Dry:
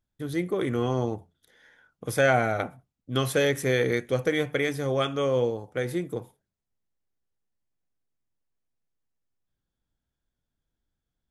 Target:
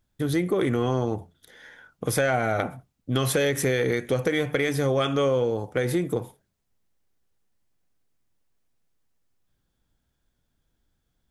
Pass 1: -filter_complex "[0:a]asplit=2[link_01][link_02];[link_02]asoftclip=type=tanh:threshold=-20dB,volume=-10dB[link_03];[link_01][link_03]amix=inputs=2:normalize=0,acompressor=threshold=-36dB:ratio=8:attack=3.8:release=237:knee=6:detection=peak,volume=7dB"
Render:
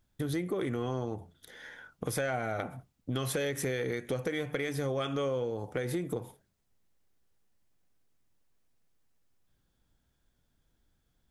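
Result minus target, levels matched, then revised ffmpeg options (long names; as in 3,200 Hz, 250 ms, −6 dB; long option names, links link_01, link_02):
downward compressor: peak gain reduction +9 dB
-filter_complex "[0:a]asplit=2[link_01][link_02];[link_02]asoftclip=type=tanh:threshold=-20dB,volume=-10dB[link_03];[link_01][link_03]amix=inputs=2:normalize=0,acompressor=threshold=-25.5dB:ratio=8:attack=3.8:release=237:knee=6:detection=peak,volume=7dB"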